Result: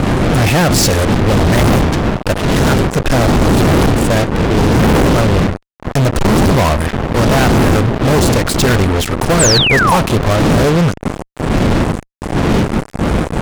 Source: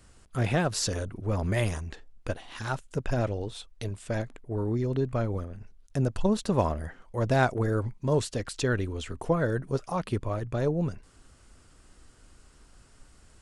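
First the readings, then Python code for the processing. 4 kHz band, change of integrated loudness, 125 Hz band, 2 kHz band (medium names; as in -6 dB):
+22.5 dB, +17.0 dB, +17.0 dB, +19.5 dB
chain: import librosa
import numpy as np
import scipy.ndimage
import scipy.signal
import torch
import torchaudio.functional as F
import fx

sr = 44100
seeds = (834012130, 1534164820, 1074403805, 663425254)

y = fx.dmg_wind(x, sr, seeds[0], corner_hz=270.0, level_db=-25.0)
y = fx.fuzz(y, sr, gain_db=40.0, gate_db=-36.0)
y = fx.spec_paint(y, sr, seeds[1], shape='fall', start_s=9.39, length_s=0.58, low_hz=770.0, high_hz=8800.0, level_db=-17.0)
y = y * 10.0 ** (4.5 / 20.0)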